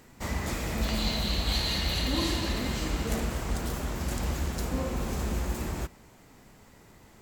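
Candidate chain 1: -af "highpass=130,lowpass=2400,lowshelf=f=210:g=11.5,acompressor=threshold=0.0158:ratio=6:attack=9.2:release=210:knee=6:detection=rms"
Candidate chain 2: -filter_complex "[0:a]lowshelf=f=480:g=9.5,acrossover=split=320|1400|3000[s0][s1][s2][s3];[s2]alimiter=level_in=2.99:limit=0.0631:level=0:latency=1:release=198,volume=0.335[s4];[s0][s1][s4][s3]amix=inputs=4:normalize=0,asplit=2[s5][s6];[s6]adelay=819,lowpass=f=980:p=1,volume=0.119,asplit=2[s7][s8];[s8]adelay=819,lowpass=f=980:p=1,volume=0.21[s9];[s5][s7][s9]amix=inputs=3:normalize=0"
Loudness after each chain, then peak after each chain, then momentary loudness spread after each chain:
-40.5 LUFS, -24.0 LUFS; -28.5 dBFS, -8.5 dBFS; 14 LU, 7 LU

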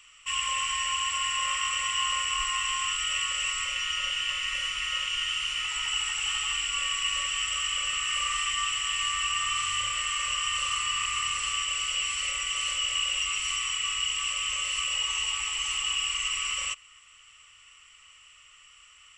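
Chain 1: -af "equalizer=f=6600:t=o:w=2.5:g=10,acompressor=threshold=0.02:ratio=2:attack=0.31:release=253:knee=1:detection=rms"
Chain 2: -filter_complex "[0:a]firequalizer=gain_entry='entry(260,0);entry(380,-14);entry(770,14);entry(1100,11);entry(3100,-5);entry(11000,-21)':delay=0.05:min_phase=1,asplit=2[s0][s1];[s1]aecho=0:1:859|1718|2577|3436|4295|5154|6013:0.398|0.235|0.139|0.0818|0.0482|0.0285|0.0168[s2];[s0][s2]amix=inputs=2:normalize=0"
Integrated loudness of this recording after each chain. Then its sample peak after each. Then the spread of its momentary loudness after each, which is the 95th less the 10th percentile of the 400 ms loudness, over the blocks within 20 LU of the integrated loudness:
-30.0 LUFS, -25.0 LUFS; -21.0 dBFS, -11.5 dBFS; 15 LU, 12 LU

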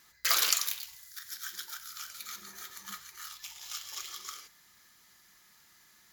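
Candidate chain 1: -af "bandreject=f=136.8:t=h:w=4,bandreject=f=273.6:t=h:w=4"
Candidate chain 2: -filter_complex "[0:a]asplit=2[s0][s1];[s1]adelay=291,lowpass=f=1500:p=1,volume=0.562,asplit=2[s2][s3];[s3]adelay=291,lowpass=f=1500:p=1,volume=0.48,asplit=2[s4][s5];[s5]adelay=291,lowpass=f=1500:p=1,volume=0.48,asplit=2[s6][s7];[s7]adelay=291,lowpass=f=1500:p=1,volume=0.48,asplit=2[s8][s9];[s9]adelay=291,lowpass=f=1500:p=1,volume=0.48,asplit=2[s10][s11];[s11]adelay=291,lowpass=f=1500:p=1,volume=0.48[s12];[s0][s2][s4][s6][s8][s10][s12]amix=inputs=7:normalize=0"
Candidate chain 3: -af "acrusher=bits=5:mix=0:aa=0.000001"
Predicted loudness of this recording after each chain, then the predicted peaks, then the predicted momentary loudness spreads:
-33.5 LUFS, -33.5 LUFS, -31.5 LUFS; -7.5 dBFS, -7.5 dBFS, -7.5 dBFS; 18 LU, 18 LU, 21 LU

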